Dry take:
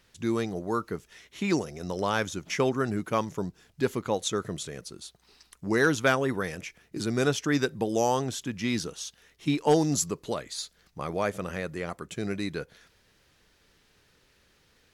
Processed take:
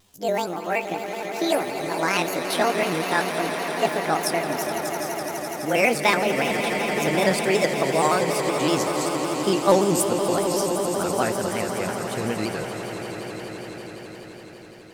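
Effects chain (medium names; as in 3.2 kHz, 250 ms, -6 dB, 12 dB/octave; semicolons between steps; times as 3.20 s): pitch bend over the whole clip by +11 st ending unshifted; echo with a slow build-up 84 ms, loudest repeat 8, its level -12.5 dB; vibrato with a chosen wave square 5.3 Hz, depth 100 cents; trim +4.5 dB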